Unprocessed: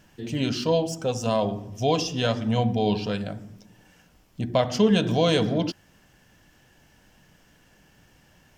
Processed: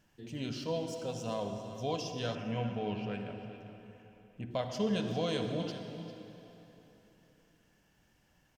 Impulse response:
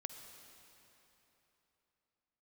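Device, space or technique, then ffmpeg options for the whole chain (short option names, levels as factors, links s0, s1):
cave: -filter_complex "[0:a]aecho=1:1:399:0.2[s0];[1:a]atrim=start_sample=2205[s1];[s0][s1]afir=irnorm=-1:irlink=0,asettb=1/sr,asplit=3[s2][s3][s4];[s2]atrim=end=2.354[s5];[s3]atrim=start=2.35:end=4.51,asetpts=PTS-STARTPTS,afade=t=in:d=0.004:c=qsin,afade=t=out:st=2.156:d=0.004:c=qsin,highshelf=f=3200:t=q:w=3:g=-7[s6];[s4]atrim=start=4.506[s7];[s5][s6]acrossfade=d=0.004:c1=hsin:c2=qsin[s8];[s8][s7]acrossfade=d=0.004:c1=qsin:c2=hsin,volume=0.355"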